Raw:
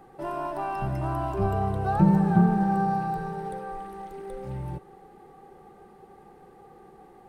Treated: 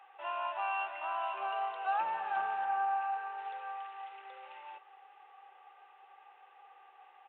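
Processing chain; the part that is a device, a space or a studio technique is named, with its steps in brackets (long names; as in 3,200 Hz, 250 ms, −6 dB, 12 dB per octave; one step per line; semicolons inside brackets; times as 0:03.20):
0:02.65–0:03.38: low-pass filter 2,800 Hz
musical greeting card (downsampling to 8,000 Hz; high-pass filter 790 Hz 24 dB per octave; parametric band 2,700 Hz +11 dB 0.4 octaves)
level −1.5 dB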